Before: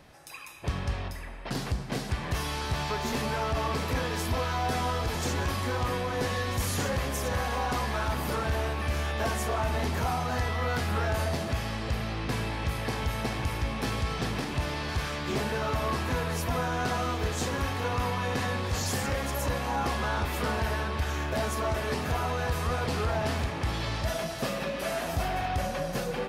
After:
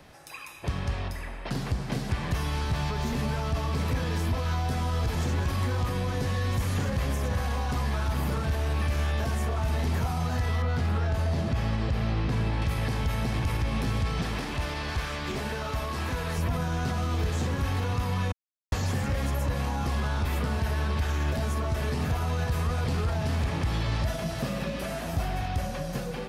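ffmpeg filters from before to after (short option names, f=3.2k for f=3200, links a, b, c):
-filter_complex "[0:a]asettb=1/sr,asplit=3[a][b][c];[a]atrim=end=10.624[d];[b]atrim=start=10.62:end=12.62,asetpts=PTS-STARTPTS,afade=t=in:d=0.004:c=qsin,afade=t=out:st=1.996:d=0.004:c=qsin,lowpass=f=1.7k:p=1[e];[c]atrim=start=12.616[f];[d][e]acrossfade=d=0.004:c1=hsin:c2=qsin[g];[g][f]acrossfade=d=0.004:c1=qsin:c2=hsin,asettb=1/sr,asplit=3[h][i][j];[h]atrim=end=14.224[k];[i]atrim=start=14.22:end=16.38,asetpts=PTS-STARTPTS,afade=t=in:d=0.004:c=qsin,afade=t=out:st=2.156:d=0.004:c=qsin,equalizer=f=120:t=o:w=2.5:g=-11.5[l];[j]atrim=start=16.376[m];[k][l]acrossfade=d=0.004:c1=hsin:c2=qsin[n];[n][m]acrossfade=d=0.004:c1=qsin:c2=hsin,asplit=3[o][p][q];[o]atrim=end=18.32,asetpts=PTS-STARTPTS,afade=t=out:st=18.316:d=0.004:c=hsin[r];[p]atrim=start=18.32:end=18.72,asetpts=PTS-STARTPTS,volume=0[s];[q]atrim=start=18.72,asetpts=PTS-STARTPTS,afade=t=in:d=0.004:c=hsin[t];[r][s][t]concat=n=3:v=0:a=1,dynaudnorm=f=700:g=7:m=9dB,alimiter=limit=-16.5dB:level=0:latency=1,acrossover=split=210|3400[u][v][w];[u]acompressor=threshold=-27dB:ratio=4[x];[v]acompressor=threshold=-38dB:ratio=4[y];[w]acompressor=threshold=-49dB:ratio=4[z];[x][y][z]amix=inputs=3:normalize=0,volume=2.5dB"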